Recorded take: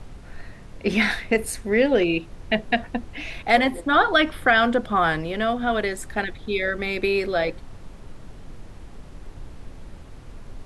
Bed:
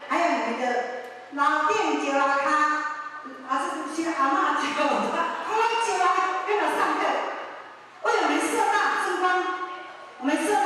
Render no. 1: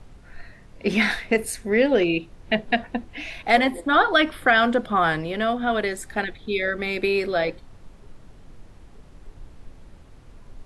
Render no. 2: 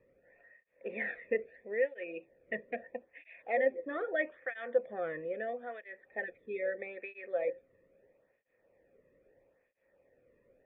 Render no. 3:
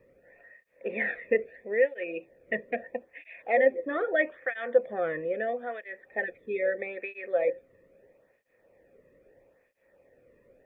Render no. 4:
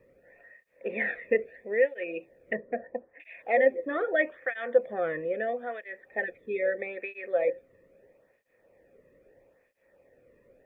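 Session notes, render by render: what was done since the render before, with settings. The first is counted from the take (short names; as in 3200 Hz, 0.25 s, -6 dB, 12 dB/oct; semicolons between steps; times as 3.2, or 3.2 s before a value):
noise print and reduce 6 dB
vocal tract filter e; tape flanging out of phase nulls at 0.77 Hz, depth 1.4 ms
gain +7 dB
2.53–3.2 LPF 1600 Hz 24 dB/oct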